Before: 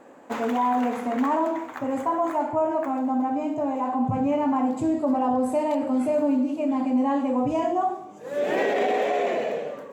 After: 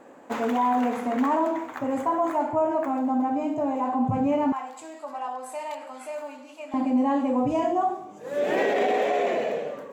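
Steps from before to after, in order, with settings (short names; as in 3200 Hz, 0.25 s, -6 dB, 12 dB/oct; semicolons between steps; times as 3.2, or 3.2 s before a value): 4.52–6.74 HPF 1100 Hz 12 dB/oct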